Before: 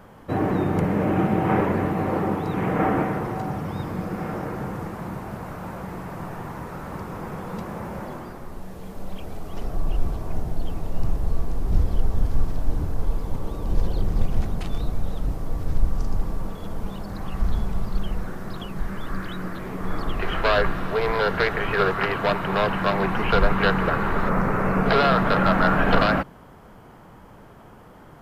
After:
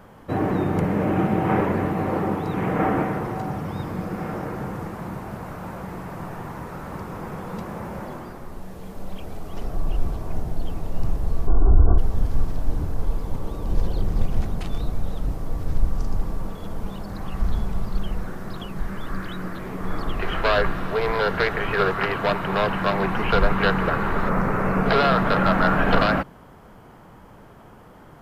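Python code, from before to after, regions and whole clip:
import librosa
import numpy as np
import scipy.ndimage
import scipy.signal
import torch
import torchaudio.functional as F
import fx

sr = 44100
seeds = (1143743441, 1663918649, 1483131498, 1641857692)

y = fx.chain(x, sr, fx.brickwall_lowpass(high_hz=1600.0),
    fx.comb(ms=2.8, depth=0.51),
    fx.env_flatten(amount_pct=70), at=(11.47, 11.98))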